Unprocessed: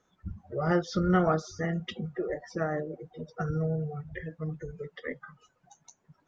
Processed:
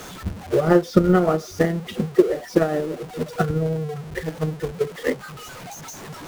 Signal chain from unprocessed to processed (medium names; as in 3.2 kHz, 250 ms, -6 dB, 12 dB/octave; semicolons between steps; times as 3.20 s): jump at every zero crossing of -31 dBFS; dynamic bell 370 Hz, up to +8 dB, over -39 dBFS, Q 0.73; transient shaper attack +11 dB, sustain -4 dB; trim -1 dB